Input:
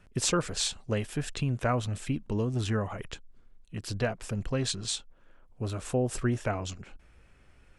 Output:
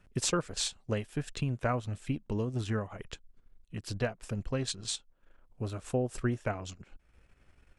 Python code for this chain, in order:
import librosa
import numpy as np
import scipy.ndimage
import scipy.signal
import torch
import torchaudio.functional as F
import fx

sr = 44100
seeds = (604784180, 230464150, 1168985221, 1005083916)

y = fx.transient(x, sr, attack_db=2, sustain_db=-8)
y = F.gain(torch.from_numpy(y), -3.5).numpy()